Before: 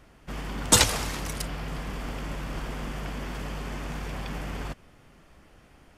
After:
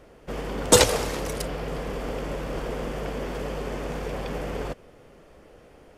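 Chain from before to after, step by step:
parametric band 480 Hz +13 dB 0.96 octaves

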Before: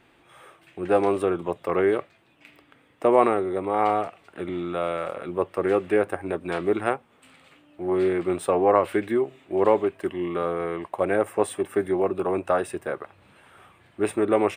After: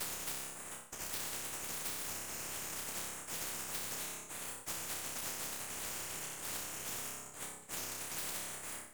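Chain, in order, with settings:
played backwards from end to start
Chebyshev high-pass filter 2,000 Hz, order 6
noise gate −60 dBFS, range −28 dB
phase-vocoder pitch shift with formants kept −10 semitones
chorus effect 0.62 Hz, delay 18.5 ms, depth 4.1 ms
full-wave rectification
on a send: flutter between parallel walls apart 8.5 metres, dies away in 0.84 s
on the sum: change of speed 1.63×
downward compressor, threshold −46 dBFS, peak gain reduction 9.5 dB
every bin compressed towards the loudest bin 4 to 1
level +12 dB

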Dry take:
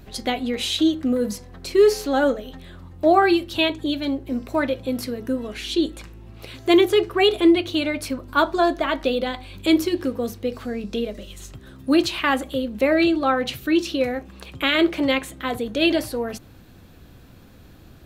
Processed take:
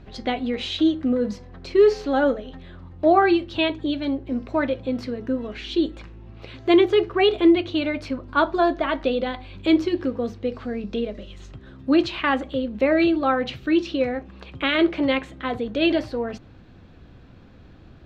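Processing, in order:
high-frequency loss of the air 180 metres

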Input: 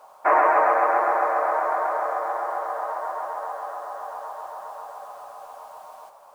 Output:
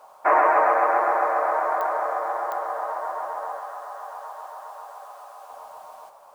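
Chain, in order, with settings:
0:03.59–0:05.50: high-pass filter 700 Hz 6 dB per octave
digital clicks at 0:01.81/0:02.52, −17 dBFS

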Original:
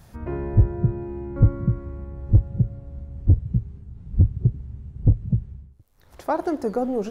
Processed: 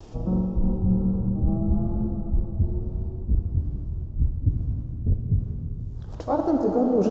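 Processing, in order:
pitch glide at a constant tempo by −12 semitones ending unshifted
octave-band graphic EQ 125/250/500/1,000/2,000 Hz +5/+7/+5/+4/−6 dB
reversed playback
downward compressor, threshold −25 dBFS, peak gain reduction 16 dB
reversed playback
comb and all-pass reverb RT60 4.5 s, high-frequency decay 0.75×, pre-delay 20 ms, DRR 3 dB
pitch vibrato 0.64 Hz 34 cents
downsampling to 16,000 Hz
level +5 dB

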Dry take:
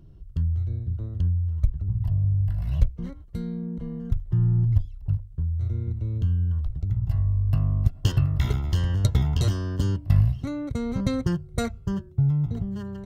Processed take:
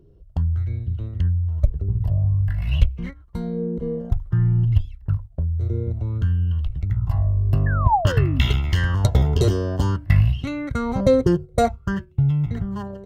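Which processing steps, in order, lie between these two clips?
noise gate −33 dBFS, range −8 dB
parametric band 64 Hz +5 dB 0.24 octaves
0:07.66–0:08.42: sound drawn into the spectrogram fall 230–1,800 Hz −31 dBFS
0:07.67–0:08.07: high-frequency loss of the air 410 metres
auto-filter bell 0.53 Hz 410–2,900 Hz +17 dB
level +2.5 dB

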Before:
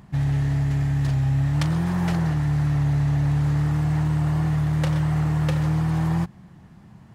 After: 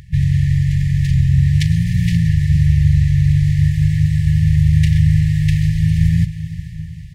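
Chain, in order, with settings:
feedback delay with all-pass diffusion 458 ms, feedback 53%, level −13 dB
pitch-shifted copies added −12 semitones −3 dB, −7 semitones −2 dB, +4 semitones −11 dB
brick-wall band-stop 180–1,700 Hz
level +5 dB

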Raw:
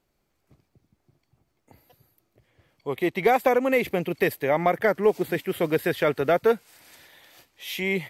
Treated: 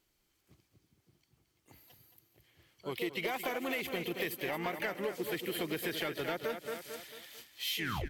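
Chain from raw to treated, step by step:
turntable brake at the end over 0.32 s
guitar amp tone stack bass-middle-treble 5-5-5
hollow resonant body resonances 330/3,100 Hz, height 9 dB, ringing for 30 ms
on a send: repeating echo 222 ms, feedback 41%, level −10.5 dB
on the sum: pitch-shifted copies added +5 semitones −9 dB
in parallel at −8.5 dB: hard clipping −37 dBFS, distortion −7 dB
on the sum: downward compressor 4 to 1, threshold −39 dBFS, peak gain reduction 9 dB
level +5.5 dB

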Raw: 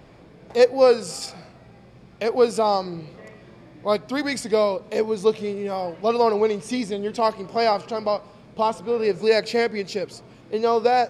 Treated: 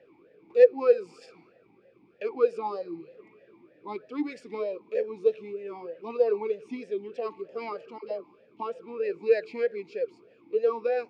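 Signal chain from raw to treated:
0:07.98–0:08.60: all-pass dispersion lows, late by 60 ms, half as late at 640 Hz
formant filter swept between two vowels e-u 3.2 Hz
level +1 dB

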